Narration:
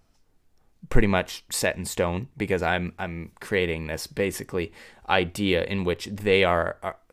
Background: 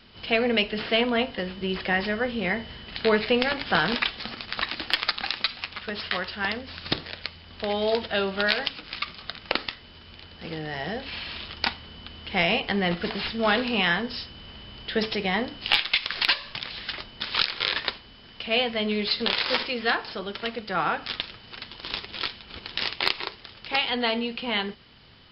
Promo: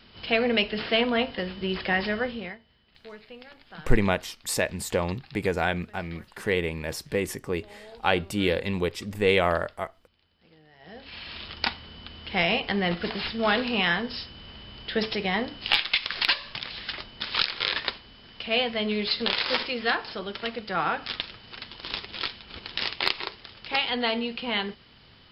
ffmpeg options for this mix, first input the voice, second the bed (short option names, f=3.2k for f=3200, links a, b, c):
-filter_complex "[0:a]adelay=2950,volume=-1.5dB[a];[1:a]volume=21.5dB,afade=t=out:st=2.18:d=0.4:silence=0.0749894,afade=t=in:st=10.79:d=0.73:silence=0.0794328[b];[a][b]amix=inputs=2:normalize=0"